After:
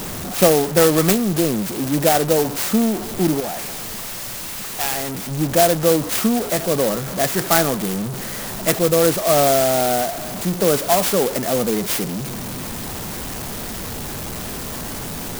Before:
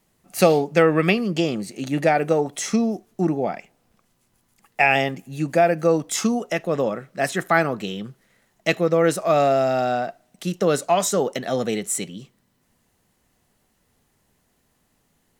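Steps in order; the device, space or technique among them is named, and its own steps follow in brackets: 3.4–5.31 pre-emphasis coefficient 0.8; early CD player with a faulty converter (zero-crossing step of -23 dBFS; clock jitter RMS 0.11 ms); gain +1 dB

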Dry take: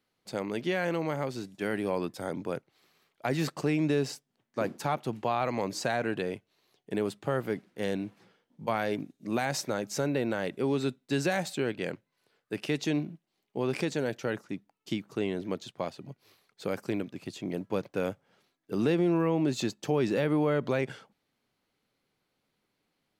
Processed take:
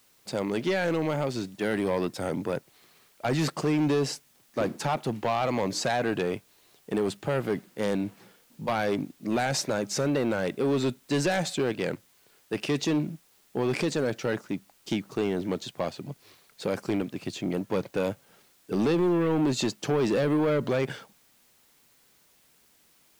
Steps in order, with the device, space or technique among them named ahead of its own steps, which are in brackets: compact cassette (soft clip -26 dBFS, distortion -11 dB; LPF 11000 Hz; wow and flutter; white noise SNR 34 dB); gain +6.5 dB

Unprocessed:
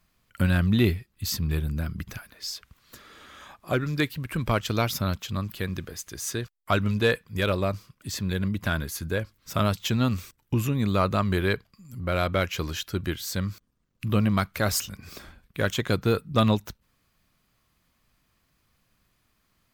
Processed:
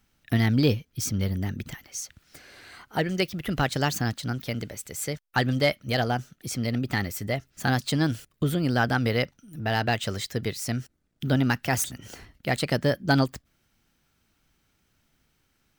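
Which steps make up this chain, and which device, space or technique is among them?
nightcore (varispeed +25%)

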